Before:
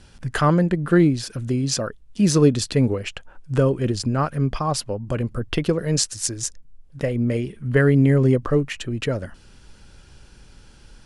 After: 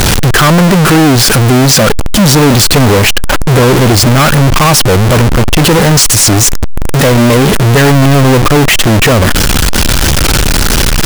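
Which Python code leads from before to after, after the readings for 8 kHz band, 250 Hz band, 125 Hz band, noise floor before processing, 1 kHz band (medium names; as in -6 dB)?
+19.5 dB, +12.5 dB, +14.5 dB, -49 dBFS, +18.5 dB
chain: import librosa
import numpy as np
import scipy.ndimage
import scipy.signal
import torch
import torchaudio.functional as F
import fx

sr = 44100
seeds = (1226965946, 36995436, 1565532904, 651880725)

y = x + 0.5 * 10.0 ** (-18.5 / 20.0) * np.sign(x)
y = fx.leveller(y, sr, passes=5)
y = fx.record_warp(y, sr, rpm=45.0, depth_cents=160.0)
y = F.gain(torch.from_numpy(y), -1.0).numpy()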